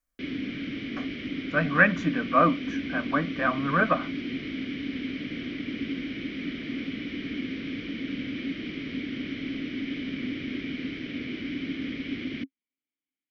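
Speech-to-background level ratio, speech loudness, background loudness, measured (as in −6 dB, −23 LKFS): 8.5 dB, −25.0 LKFS, −33.5 LKFS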